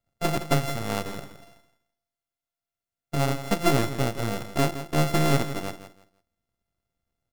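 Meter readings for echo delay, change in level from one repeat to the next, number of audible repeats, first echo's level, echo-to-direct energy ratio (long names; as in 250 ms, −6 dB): 166 ms, −12.5 dB, 2, −12.0 dB, −11.5 dB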